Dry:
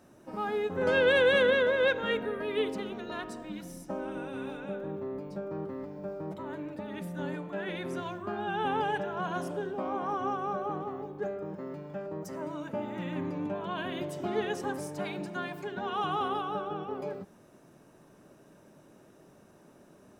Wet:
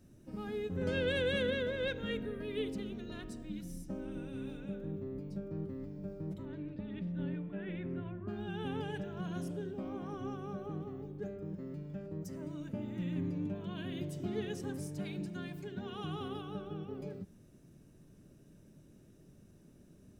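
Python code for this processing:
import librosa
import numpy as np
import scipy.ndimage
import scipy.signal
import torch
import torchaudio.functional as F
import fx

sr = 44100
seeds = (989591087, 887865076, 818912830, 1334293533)

y = fx.lowpass(x, sr, hz=fx.line((6.45, 5000.0), (8.27, 2100.0)), slope=24, at=(6.45, 8.27), fade=0.02)
y = fx.tone_stack(y, sr, knobs='10-0-1')
y = y * 10.0 ** (16.0 / 20.0)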